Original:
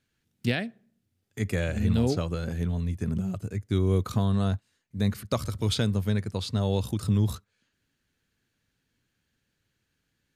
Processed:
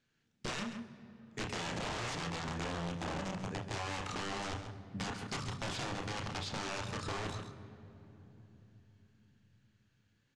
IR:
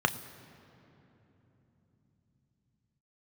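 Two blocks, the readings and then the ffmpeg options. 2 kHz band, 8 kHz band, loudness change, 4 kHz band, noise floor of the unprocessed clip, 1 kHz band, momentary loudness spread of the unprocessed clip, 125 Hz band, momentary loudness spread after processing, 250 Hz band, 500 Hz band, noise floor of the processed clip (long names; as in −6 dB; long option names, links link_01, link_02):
−2.5 dB, −2.5 dB, −11.5 dB, −4.5 dB, −78 dBFS, 0.0 dB, 8 LU, −16.5 dB, 15 LU, −14.0 dB, −11.0 dB, −76 dBFS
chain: -filter_complex "[0:a]equalizer=frequency=70:width_type=o:width=0.89:gain=-12.5,aeval=exprs='(mod(22.4*val(0)+1,2)-1)/22.4':channel_layout=same,lowpass=frequency=7300:width=0.5412,lowpass=frequency=7300:width=1.3066,asplit=2[link_01][link_02];[link_02]adelay=134.1,volume=-11dB,highshelf=frequency=4000:gain=-3.02[link_03];[link_01][link_03]amix=inputs=2:normalize=0,asplit=2[link_04][link_05];[1:a]atrim=start_sample=2205,adelay=31[link_06];[link_05][link_06]afir=irnorm=-1:irlink=0,volume=-13dB[link_07];[link_04][link_07]amix=inputs=2:normalize=0,acompressor=threshold=-33dB:ratio=6,volume=-2.5dB"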